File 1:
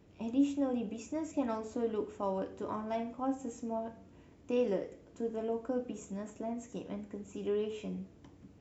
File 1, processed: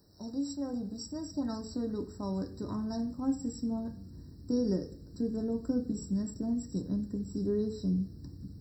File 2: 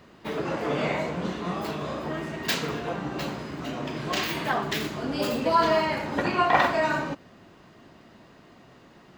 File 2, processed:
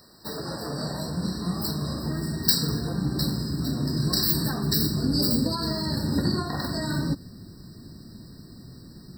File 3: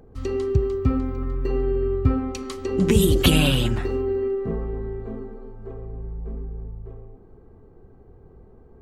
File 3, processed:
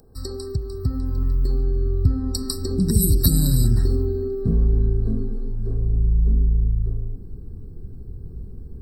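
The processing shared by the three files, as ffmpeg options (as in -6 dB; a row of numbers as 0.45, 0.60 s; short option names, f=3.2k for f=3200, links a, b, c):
-af "acompressor=threshold=-25dB:ratio=4,asubboost=boost=10.5:cutoff=220,aexciter=amount=9.3:drive=5.9:freq=3.9k,afftfilt=real='re*eq(mod(floor(b*sr/1024/1900),2),0)':imag='im*eq(mod(floor(b*sr/1024/1900),2),0)':win_size=1024:overlap=0.75,volume=-4dB"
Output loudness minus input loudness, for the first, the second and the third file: +2.0, +1.0, +1.0 LU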